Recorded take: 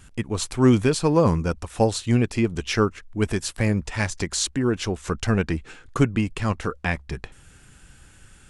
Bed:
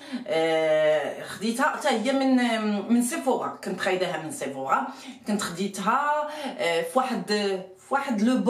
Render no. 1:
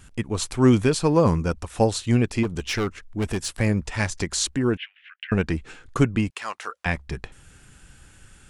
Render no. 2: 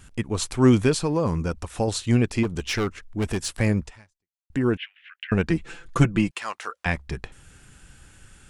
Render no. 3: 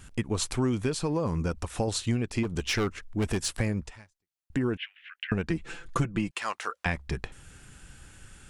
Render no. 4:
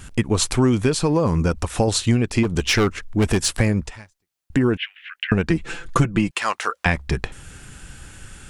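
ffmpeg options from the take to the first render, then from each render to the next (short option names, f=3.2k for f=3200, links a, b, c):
-filter_complex "[0:a]asettb=1/sr,asplit=3[a][b][c];[a]atrim=end=2.434[d];[b]atrim=start=2.43:end=3.55,asetpts=PTS-STARTPTS,afade=t=in:d=0.004:c=qsin,afade=t=out:st=1.116:d=0.004:c=qsin,asoftclip=type=hard:threshold=-20.5dB[e];[c]atrim=start=3.546[f];[d][e]acrossfade=d=0.004:c1=hsin:c2=qsin[g];[g][f]acrossfade=d=0.004:c1=qsin:c2=hsin,asettb=1/sr,asplit=3[h][i][j];[h]atrim=end=4.774[k];[i]atrim=start=4.77:end=5.32,asetpts=PTS-STARTPTS,afade=t=in:d=0.004:c=qsin,afade=t=out:st=0.546:d=0.004:c=qsin,asuperpass=centerf=2300:order=8:qfactor=1.5[l];[j]atrim=start=5.316[m];[k][l]acrossfade=d=0.004:c1=hsin:c2=qsin[n];[n][m]acrossfade=d=0.004:c1=qsin:c2=hsin,asettb=1/sr,asplit=3[o][p][q];[o]atrim=end=6.304[r];[p]atrim=start=6.3:end=6.86,asetpts=PTS-STARTPTS,afade=t=in:d=0.004:c=qsin,afade=t=out:st=0.556:d=0.004:c=qsin,highpass=850[s];[q]atrim=start=6.856[t];[r][s]acrossfade=d=0.004:c1=hsin:c2=qsin[u];[u][t]acrossfade=d=0.004:c1=qsin:c2=hsin"
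-filter_complex "[0:a]asettb=1/sr,asplit=3[a][b][c];[a]atrim=end=0.934[d];[b]atrim=start=0.93:end=1.88,asetpts=PTS-STARTPTS,afade=t=in:d=0.004:c=qsin,afade=t=out:st=0.946:d=0.004:c=qsin,acompressor=threshold=-22dB:ratio=2:attack=3.2:release=140:knee=1:detection=peak[e];[c]atrim=start=1.876[f];[d][e]acrossfade=d=0.004:c1=hsin:c2=qsin[g];[g][f]acrossfade=d=0.004:c1=qsin:c2=hsin,asettb=1/sr,asplit=3[h][i][j];[h]atrim=end=5.494[k];[i]atrim=start=5.49:end=6.4,asetpts=PTS-STARTPTS,afade=t=in:d=0.004:c=qsin,afade=t=out:st=0.906:d=0.004:c=qsin,aecho=1:1:5.9:0.76,atrim=end_sample=40131[l];[j]atrim=start=6.396[m];[k][l]acrossfade=d=0.004:c1=hsin:c2=qsin[n];[n][m]acrossfade=d=0.004:c1=qsin:c2=hsin,asplit=2[o][p];[o]atrim=end=4.5,asetpts=PTS-STARTPTS,afade=t=out:st=3.83:d=0.67:c=exp[q];[p]atrim=start=4.5,asetpts=PTS-STARTPTS,afade=t=in:d=0.004:c=hsin[r];[q][r]concat=n=2:v=0:a=1"
-af "acompressor=threshold=-24dB:ratio=6"
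-af "volume=9.5dB"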